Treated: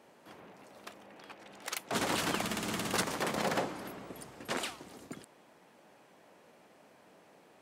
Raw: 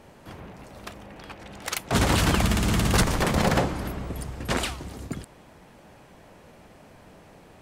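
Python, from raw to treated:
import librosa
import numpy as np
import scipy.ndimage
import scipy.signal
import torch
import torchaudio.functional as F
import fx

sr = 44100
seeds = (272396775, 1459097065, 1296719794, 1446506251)

y = scipy.signal.sosfilt(scipy.signal.butter(2, 250.0, 'highpass', fs=sr, output='sos'), x)
y = y * librosa.db_to_amplitude(-8.0)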